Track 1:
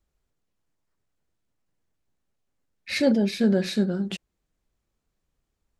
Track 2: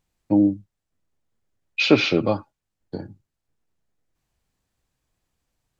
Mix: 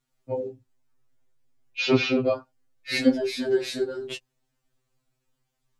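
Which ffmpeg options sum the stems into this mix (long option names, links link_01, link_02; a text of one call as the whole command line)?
ffmpeg -i stem1.wav -i stem2.wav -filter_complex "[0:a]volume=2.5dB[link_01];[1:a]adynamicequalizer=threshold=0.0282:dfrequency=350:dqfactor=1.1:tfrequency=350:tqfactor=1.1:attack=5:release=100:ratio=0.375:range=2.5:mode=boostabove:tftype=bell,volume=-2dB[link_02];[link_01][link_02]amix=inputs=2:normalize=0,afftfilt=real='re*2.45*eq(mod(b,6),0)':imag='im*2.45*eq(mod(b,6),0)':win_size=2048:overlap=0.75" out.wav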